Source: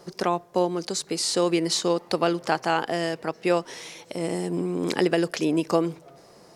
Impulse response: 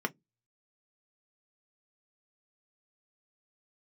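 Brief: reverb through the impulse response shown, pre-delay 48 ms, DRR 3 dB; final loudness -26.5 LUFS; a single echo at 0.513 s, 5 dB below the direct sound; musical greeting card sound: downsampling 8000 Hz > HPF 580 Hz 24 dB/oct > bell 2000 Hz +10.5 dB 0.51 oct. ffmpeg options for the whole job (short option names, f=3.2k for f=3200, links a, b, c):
-filter_complex "[0:a]aecho=1:1:513:0.562,asplit=2[a][b];[1:a]atrim=start_sample=2205,adelay=48[c];[b][c]afir=irnorm=-1:irlink=0,volume=-9dB[d];[a][d]amix=inputs=2:normalize=0,aresample=8000,aresample=44100,highpass=f=580:w=0.5412,highpass=f=580:w=1.3066,equalizer=f=2k:t=o:w=0.51:g=10.5,volume=-0.5dB"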